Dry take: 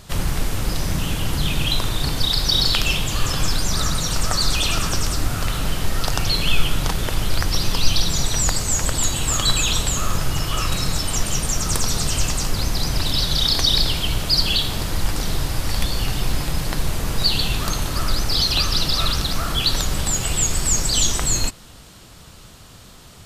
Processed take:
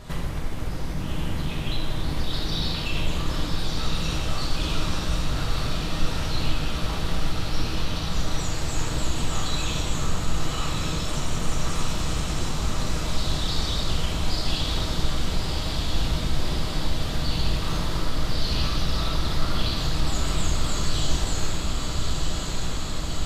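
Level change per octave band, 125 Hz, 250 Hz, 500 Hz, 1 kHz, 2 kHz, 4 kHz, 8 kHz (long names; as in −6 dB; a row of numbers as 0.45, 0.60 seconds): −3.0, −2.0, −2.5, −4.0, −6.0, −9.0, −12.5 decibels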